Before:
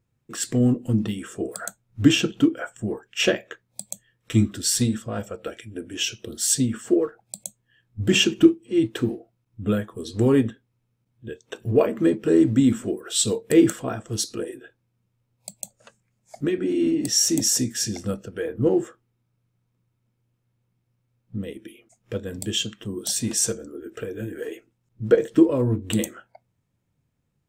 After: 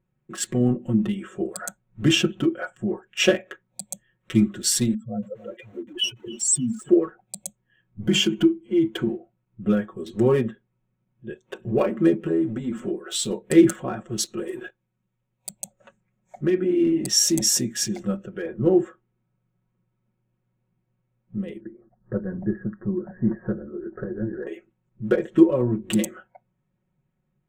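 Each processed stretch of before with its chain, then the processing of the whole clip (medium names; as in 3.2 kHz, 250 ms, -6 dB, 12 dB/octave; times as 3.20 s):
4.94–6.89 s: spectral contrast enhancement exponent 3.2 + bit-crushed delay 286 ms, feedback 55%, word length 7-bit, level -15 dB
8.02–9.07 s: rippled EQ curve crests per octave 1.8, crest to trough 9 dB + compression 2:1, threshold -20 dBFS
12.17–13.31 s: compression 4:1, threshold -23 dBFS + doubling 12 ms -8 dB
14.38–15.50 s: treble shelf 3 kHz +10 dB + compression 3:1, threshold -37 dBFS + waveshaping leveller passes 2
21.60–24.47 s: steep low-pass 1.8 kHz 96 dB/octave + bass shelf 180 Hz +9.5 dB + delay 854 ms -23 dB
whole clip: local Wiener filter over 9 samples; comb 5.4 ms, depth 86%; trim -1.5 dB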